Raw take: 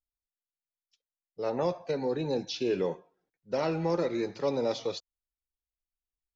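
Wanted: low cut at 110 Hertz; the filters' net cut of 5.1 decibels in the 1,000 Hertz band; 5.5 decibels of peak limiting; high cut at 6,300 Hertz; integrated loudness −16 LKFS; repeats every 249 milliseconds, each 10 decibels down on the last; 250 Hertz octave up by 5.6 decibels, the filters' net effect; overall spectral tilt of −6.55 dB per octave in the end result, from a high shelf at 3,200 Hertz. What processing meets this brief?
high-pass filter 110 Hz
low-pass filter 6,300 Hz
parametric band 250 Hz +8.5 dB
parametric band 1,000 Hz −7 dB
high-shelf EQ 3,200 Hz −3.5 dB
brickwall limiter −21 dBFS
repeating echo 249 ms, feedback 32%, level −10 dB
level +15 dB

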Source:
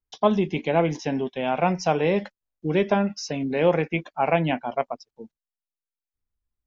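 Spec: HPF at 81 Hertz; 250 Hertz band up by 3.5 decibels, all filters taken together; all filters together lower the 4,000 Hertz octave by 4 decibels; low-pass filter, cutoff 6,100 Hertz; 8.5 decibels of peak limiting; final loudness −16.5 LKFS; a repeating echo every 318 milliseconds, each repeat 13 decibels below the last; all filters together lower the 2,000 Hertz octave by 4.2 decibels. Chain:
high-pass filter 81 Hz
low-pass filter 6,100 Hz
parametric band 250 Hz +5 dB
parametric band 2,000 Hz −4.5 dB
parametric band 4,000 Hz −3 dB
brickwall limiter −13.5 dBFS
repeating echo 318 ms, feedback 22%, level −13 dB
level +8.5 dB

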